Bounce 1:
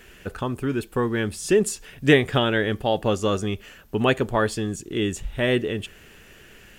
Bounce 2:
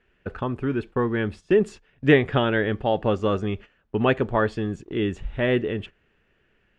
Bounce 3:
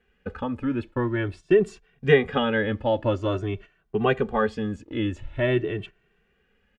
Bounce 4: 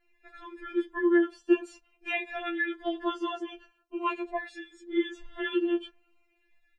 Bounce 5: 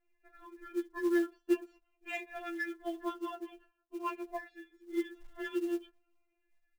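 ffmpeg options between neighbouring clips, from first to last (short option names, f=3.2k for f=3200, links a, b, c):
-af "lowpass=2.5k,agate=range=-16dB:threshold=-37dB:ratio=16:detection=peak"
-filter_complex "[0:a]asplit=2[a][b];[b]adelay=2.1,afreqshift=0.47[c];[a][c]amix=inputs=2:normalize=1,volume=1.5dB"
-filter_complex "[0:a]acrossover=split=270|2600[a][b][c];[a]acompressor=threshold=-38dB:ratio=6[d];[d][b][c]amix=inputs=3:normalize=0,afftfilt=real='re*4*eq(mod(b,16),0)':imag='im*4*eq(mod(b,16),0)':win_size=2048:overlap=0.75"
-af "adynamicsmooth=sensitivity=2:basefreq=2.1k,acrusher=bits=6:mode=log:mix=0:aa=0.000001,volume=-6.5dB"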